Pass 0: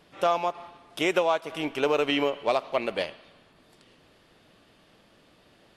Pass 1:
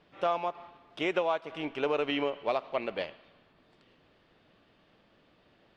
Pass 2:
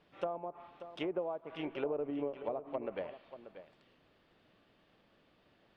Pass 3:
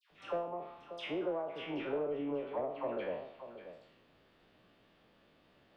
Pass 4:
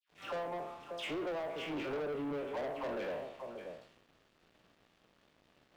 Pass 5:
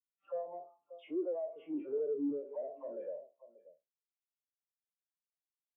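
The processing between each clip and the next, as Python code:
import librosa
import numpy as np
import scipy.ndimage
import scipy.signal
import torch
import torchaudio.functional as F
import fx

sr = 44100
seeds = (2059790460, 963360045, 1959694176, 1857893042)

y1 = scipy.signal.sosfilt(scipy.signal.butter(2, 3700.0, 'lowpass', fs=sr, output='sos'), x)
y1 = F.gain(torch.from_numpy(y1), -5.0).numpy()
y2 = fx.env_lowpass_down(y1, sr, base_hz=570.0, full_db=-27.0)
y2 = y2 + 10.0 ** (-12.5 / 20.0) * np.pad(y2, (int(585 * sr / 1000.0), 0))[:len(y2)]
y2 = F.gain(torch.from_numpy(y2), -4.5).numpy()
y3 = fx.spec_trails(y2, sr, decay_s=0.58)
y3 = fx.dispersion(y3, sr, late='lows', ms=109.0, hz=1300.0)
y3 = 10.0 ** (-25.0 / 20.0) * np.tanh(y3 / 10.0 ** (-25.0 / 20.0))
y4 = fx.leveller(y3, sr, passes=3)
y4 = F.gain(torch.from_numpy(y4), -7.0).numpy()
y5 = fx.spectral_expand(y4, sr, expansion=2.5)
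y5 = F.gain(torch.from_numpy(y5), 5.0).numpy()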